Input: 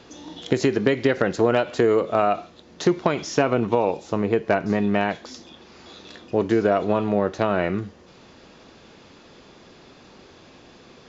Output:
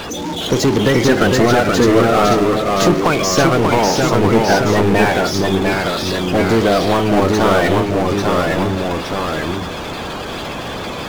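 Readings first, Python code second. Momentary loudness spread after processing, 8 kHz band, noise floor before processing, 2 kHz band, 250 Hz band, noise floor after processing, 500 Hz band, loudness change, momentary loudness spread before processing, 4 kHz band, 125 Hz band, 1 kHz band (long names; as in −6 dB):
11 LU, can't be measured, −50 dBFS, +11.0 dB, +9.0 dB, −26 dBFS, +7.5 dB, +7.0 dB, 10 LU, +15.5 dB, +12.0 dB, +10.5 dB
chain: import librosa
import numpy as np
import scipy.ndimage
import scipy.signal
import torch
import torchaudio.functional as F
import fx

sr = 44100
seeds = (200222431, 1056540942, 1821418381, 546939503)

y = fx.spec_quant(x, sr, step_db=30)
y = fx.power_curve(y, sr, exponent=0.5)
y = fx.echo_pitch(y, sr, ms=405, semitones=-1, count=2, db_per_echo=-3.0)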